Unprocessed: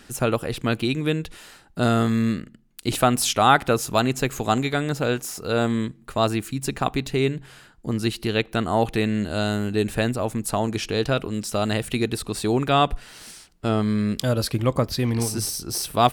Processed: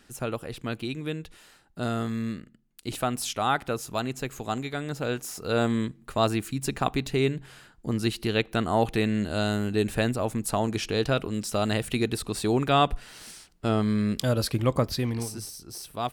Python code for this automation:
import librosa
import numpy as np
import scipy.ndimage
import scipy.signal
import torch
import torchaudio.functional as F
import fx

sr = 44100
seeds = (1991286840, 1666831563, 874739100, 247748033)

y = fx.gain(x, sr, db=fx.line((4.7, -9.0), (5.56, -2.5), (14.91, -2.5), (15.5, -12.5)))